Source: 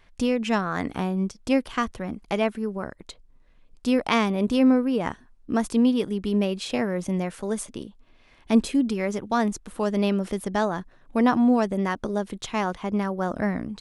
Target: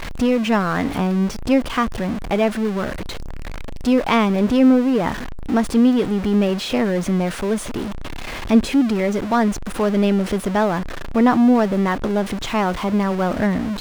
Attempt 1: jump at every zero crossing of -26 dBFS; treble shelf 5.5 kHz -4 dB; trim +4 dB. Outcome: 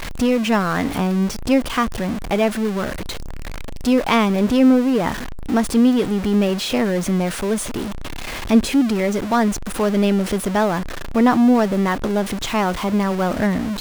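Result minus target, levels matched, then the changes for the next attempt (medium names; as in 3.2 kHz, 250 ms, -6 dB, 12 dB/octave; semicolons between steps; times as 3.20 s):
8 kHz band +5.0 dB
change: treble shelf 5.5 kHz -11.5 dB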